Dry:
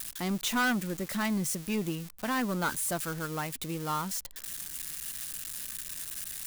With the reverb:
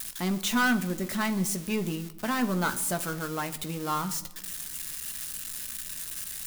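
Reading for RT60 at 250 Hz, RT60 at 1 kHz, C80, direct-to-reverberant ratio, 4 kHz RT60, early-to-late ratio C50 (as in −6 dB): 1.4 s, 0.90 s, 18.0 dB, 7.5 dB, 0.65 s, 15.0 dB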